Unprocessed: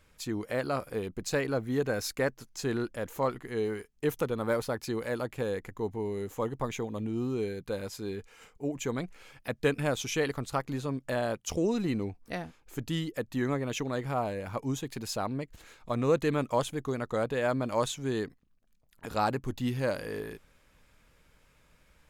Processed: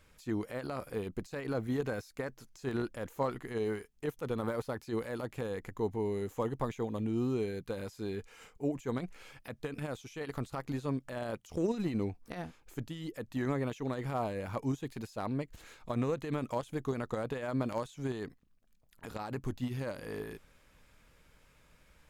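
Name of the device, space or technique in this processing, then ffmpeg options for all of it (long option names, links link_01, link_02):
de-esser from a sidechain: -filter_complex "[0:a]asplit=2[link_01][link_02];[link_02]highpass=4900,apad=whole_len=974381[link_03];[link_01][link_03]sidechaincompress=threshold=-54dB:ratio=16:attack=1.4:release=43"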